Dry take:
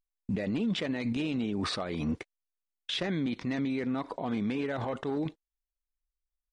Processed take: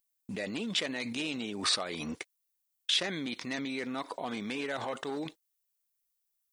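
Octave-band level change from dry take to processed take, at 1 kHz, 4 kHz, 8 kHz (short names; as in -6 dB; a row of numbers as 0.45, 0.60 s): 0.0, +6.0, +10.5 dB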